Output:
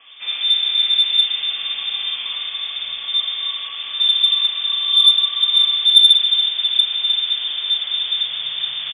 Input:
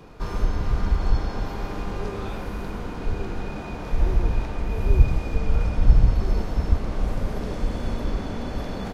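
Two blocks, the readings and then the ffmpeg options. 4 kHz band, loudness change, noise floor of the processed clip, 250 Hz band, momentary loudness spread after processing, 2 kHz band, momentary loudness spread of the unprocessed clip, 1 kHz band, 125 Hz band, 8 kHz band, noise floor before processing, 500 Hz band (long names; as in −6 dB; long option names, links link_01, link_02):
+34.5 dB, +12.0 dB, −30 dBFS, below −25 dB, 13 LU, +7.0 dB, 11 LU, −5.0 dB, below −35 dB, can't be measured, −33 dBFS, below −15 dB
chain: -filter_complex "[0:a]lowpass=frequency=3100:width_type=q:width=0.5098,lowpass=frequency=3100:width_type=q:width=0.6013,lowpass=frequency=3100:width_type=q:width=0.9,lowpass=frequency=3100:width_type=q:width=2.563,afreqshift=-3600,acrossover=split=210|2700[link_01][link_02][link_03];[link_03]adelay=60[link_04];[link_01]adelay=620[link_05];[link_05][link_02][link_04]amix=inputs=3:normalize=0,acontrast=31"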